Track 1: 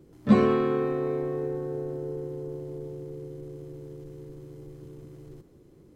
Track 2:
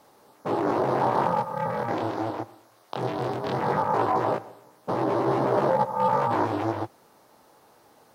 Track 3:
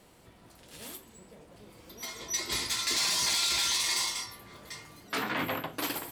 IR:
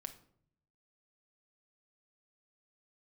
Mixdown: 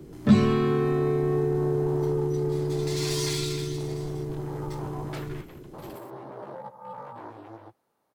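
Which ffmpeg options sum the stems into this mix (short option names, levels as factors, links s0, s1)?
-filter_complex "[0:a]bandreject=f=520:w=12,acontrast=87,volume=1,asplit=2[s0][s1];[s1]volume=0.631[s2];[1:a]equalizer=f=5500:w=1.5:g=-5,adelay=850,volume=0.133[s3];[2:a]aeval=exprs='sgn(val(0))*max(abs(val(0))-0.00531,0)':c=same,aeval=exprs='val(0)*pow(10,-18*(0.5-0.5*cos(2*PI*0.62*n/s))/20)':c=same,volume=0.75[s4];[3:a]atrim=start_sample=2205[s5];[s2][s5]afir=irnorm=-1:irlink=0[s6];[s0][s3][s4][s6]amix=inputs=4:normalize=0,acrossover=split=160|3000[s7][s8][s9];[s8]acompressor=threshold=0.0708:ratio=6[s10];[s7][s10][s9]amix=inputs=3:normalize=0"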